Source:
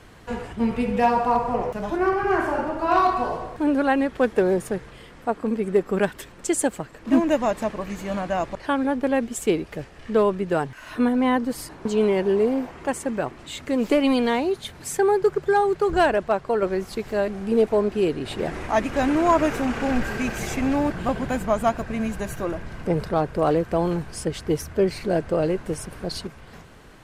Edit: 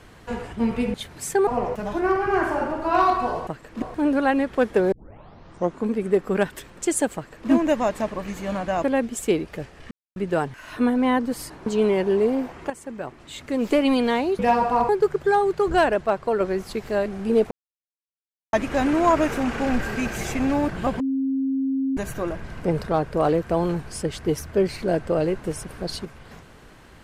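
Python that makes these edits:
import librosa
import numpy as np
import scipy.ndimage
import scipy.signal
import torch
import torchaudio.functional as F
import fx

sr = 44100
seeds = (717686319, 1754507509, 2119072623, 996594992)

y = fx.edit(x, sr, fx.swap(start_s=0.94, length_s=0.5, other_s=14.58, other_length_s=0.53),
    fx.tape_start(start_s=4.54, length_s=0.96),
    fx.duplicate(start_s=6.77, length_s=0.35, to_s=3.44),
    fx.cut(start_s=8.46, length_s=0.57),
    fx.silence(start_s=10.1, length_s=0.25),
    fx.fade_in_from(start_s=12.89, length_s=1.08, floor_db=-12.0),
    fx.silence(start_s=17.73, length_s=1.02),
    fx.bleep(start_s=21.22, length_s=0.97, hz=268.0, db=-20.5), tone=tone)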